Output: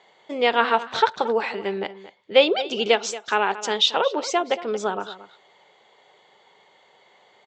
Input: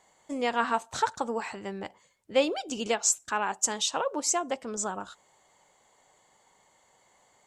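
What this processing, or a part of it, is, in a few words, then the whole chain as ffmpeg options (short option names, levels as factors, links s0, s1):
kitchen radio: -filter_complex "[0:a]highpass=180,equalizer=f=270:t=q:w=4:g=-7,equalizer=f=410:t=q:w=4:g=7,equalizer=f=1100:t=q:w=4:g=-4,equalizer=f=1700:t=q:w=4:g=-4,equalizer=f=3500:t=q:w=4:g=6,lowpass=f=4600:w=0.5412,lowpass=f=4600:w=1.3066,equalizer=f=1900:w=1:g=4.5,asplit=2[s0][s1];[s1]adelay=227.4,volume=0.178,highshelf=f=4000:g=-5.12[s2];[s0][s2]amix=inputs=2:normalize=0,volume=2.24"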